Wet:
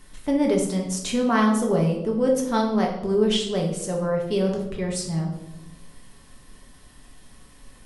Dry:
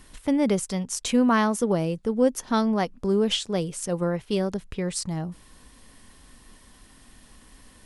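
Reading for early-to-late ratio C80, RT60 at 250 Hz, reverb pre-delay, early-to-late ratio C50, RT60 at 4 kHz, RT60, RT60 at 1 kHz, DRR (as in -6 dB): 9.0 dB, 1.2 s, 5 ms, 5.5 dB, 0.60 s, 0.90 s, 0.75 s, -1.0 dB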